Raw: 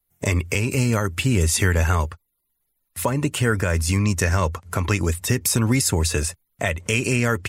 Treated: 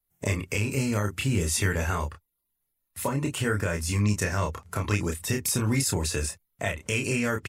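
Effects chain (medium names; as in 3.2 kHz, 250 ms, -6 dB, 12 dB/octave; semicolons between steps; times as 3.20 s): doubling 29 ms -4 dB; trim -7 dB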